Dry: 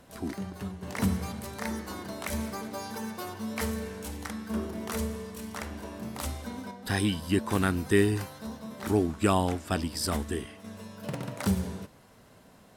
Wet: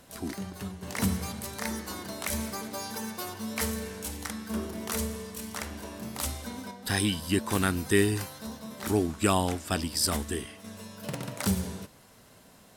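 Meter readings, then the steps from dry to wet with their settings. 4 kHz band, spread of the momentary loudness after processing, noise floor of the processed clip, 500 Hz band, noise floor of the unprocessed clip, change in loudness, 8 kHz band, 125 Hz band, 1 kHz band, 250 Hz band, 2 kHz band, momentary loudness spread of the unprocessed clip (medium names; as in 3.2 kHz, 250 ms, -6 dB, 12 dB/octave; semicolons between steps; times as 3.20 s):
+4.0 dB, 13 LU, -56 dBFS, -1.0 dB, -56 dBFS, +0.5 dB, +6.0 dB, -1.0 dB, 0.0 dB, -1.0 dB, +1.5 dB, 14 LU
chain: treble shelf 2.9 kHz +8 dB; trim -1 dB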